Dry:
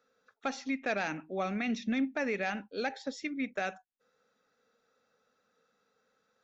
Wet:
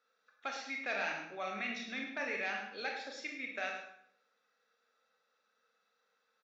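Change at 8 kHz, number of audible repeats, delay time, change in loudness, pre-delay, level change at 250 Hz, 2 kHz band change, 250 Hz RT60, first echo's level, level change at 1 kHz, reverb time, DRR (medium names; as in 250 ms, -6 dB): no reading, 1, 105 ms, -4.5 dB, 21 ms, -14.0 dB, -0.5 dB, 0.75 s, -9.5 dB, -4.0 dB, 0.70 s, 0.0 dB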